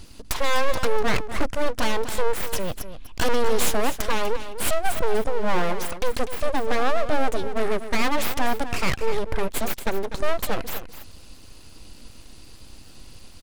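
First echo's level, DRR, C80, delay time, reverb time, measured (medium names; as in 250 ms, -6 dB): -11.5 dB, no reverb, no reverb, 247 ms, no reverb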